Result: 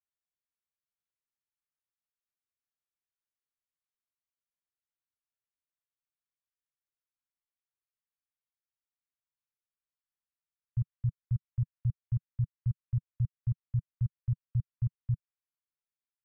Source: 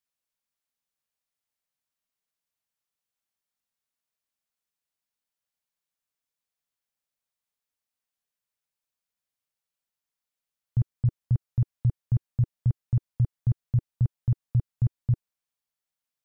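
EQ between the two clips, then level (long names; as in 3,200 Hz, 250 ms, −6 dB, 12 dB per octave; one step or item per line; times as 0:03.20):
inverse Chebyshev band-stop filter 270–590 Hz, stop band 50 dB
high-frequency loss of the air 490 metres
−6.0 dB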